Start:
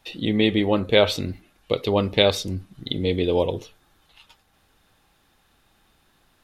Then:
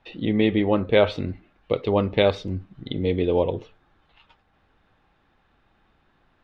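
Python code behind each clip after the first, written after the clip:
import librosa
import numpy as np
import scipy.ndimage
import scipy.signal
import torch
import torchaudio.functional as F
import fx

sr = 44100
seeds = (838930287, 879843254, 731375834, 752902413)

y = scipy.signal.sosfilt(scipy.signal.butter(2, 2300.0, 'lowpass', fs=sr, output='sos'), x)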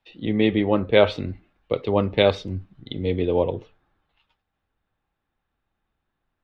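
y = fx.band_widen(x, sr, depth_pct=40)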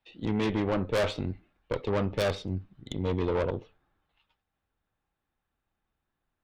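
y = fx.tube_stage(x, sr, drive_db=23.0, bias=0.75)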